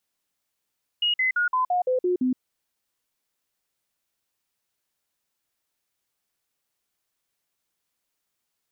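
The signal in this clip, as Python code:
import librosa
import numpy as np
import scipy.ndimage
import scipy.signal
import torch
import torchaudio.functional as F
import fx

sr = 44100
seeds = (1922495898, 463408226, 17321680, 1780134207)

y = fx.stepped_sweep(sr, from_hz=2880.0, direction='down', per_octave=2, tones=8, dwell_s=0.12, gap_s=0.05, level_db=-19.5)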